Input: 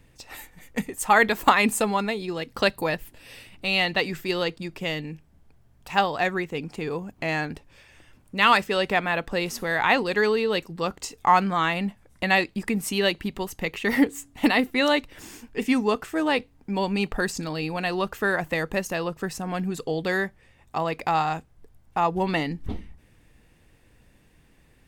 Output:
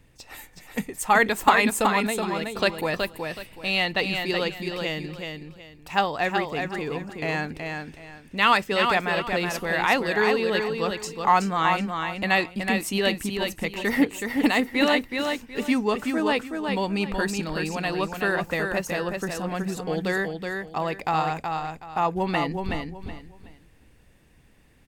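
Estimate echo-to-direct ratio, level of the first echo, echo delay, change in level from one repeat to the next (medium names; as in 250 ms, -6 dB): -4.5 dB, -5.0 dB, 373 ms, -11.5 dB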